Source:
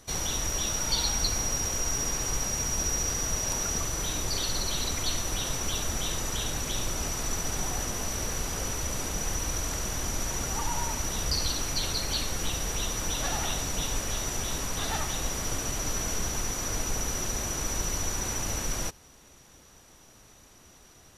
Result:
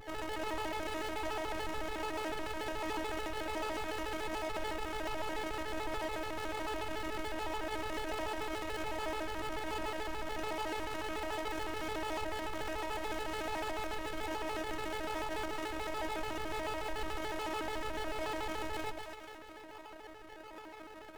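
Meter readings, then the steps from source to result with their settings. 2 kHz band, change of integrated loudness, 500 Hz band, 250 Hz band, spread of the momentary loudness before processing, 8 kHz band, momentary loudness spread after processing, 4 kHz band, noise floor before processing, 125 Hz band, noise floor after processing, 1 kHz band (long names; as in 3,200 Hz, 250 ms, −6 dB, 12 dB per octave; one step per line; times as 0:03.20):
−2.5 dB, −9.0 dB, +0.5 dB, −3.5 dB, 4 LU, −25.0 dB, 3 LU, −12.5 dB, −55 dBFS, −16.0 dB, −50 dBFS, −0.5 dB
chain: lower of the sound and its delayed copy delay 8.5 ms
high-shelf EQ 5,500 Hz −10 dB
gate on every frequency bin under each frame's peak −25 dB strong
in parallel at +3 dB: compressor whose output falls as the input rises −41 dBFS
on the sum: sample-and-hold swept by an LFO 36×, swing 60% 1.3 Hz
three-way crossover with the lows and the highs turned down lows −13 dB, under 500 Hz, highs −12 dB, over 3,100 Hz
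hard clipping −37 dBFS, distortion −9 dB
echo with a time of its own for lows and highs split 1,000 Hz, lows 106 ms, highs 237 ms, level −6.5 dB
phases set to zero 374 Hz
pitch modulation by a square or saw wave square 6.9 Hz, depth 250 cents
level +4 dB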